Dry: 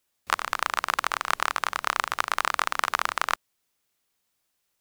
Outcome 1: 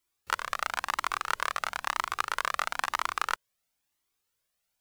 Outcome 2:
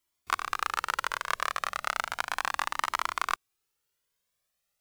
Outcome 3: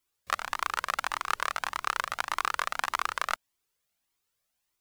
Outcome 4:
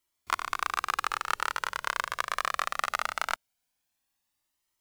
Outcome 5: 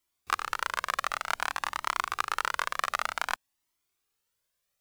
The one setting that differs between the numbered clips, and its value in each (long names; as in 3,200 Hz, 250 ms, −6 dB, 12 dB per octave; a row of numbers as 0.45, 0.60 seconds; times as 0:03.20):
flanger whose copies keep moving one way, speed: 1, 0.34, 1.7, 0.21, 0.54 Hertz